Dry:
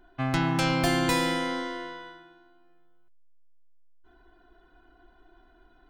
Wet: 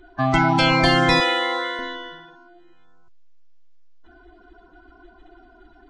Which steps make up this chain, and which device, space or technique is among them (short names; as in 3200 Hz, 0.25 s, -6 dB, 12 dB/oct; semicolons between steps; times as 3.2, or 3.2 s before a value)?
clip after many re-uploads (LPF 6800 Hz 24 dB/oct; bin magnitudes rounded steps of 30 dB); 1.2–1.79 elliptic band-pass 370–9500 Hz, stop band 40 dB; gain +8.5 dB